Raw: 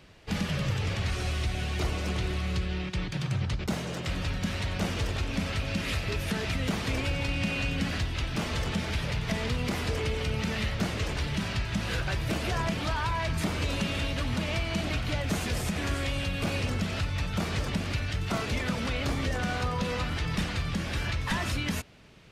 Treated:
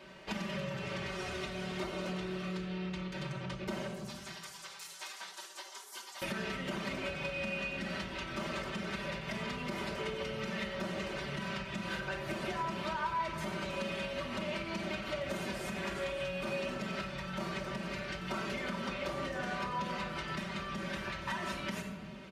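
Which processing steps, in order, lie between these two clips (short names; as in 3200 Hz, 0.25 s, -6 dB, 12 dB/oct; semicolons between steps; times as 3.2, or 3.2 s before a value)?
3.87–6.22 spectral gate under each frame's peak -30 dB weak; comb 5.2 ms, depth 94%; shoebox room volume 2500 m³, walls furnished, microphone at 2.7 m; compressor 6:1, threshold -32 dBFS, peak gain reduction 13 dB; HPF 450 Hz 6 dB/oct; high shelf 2700 Hz -10 dB; gain +3.5 dB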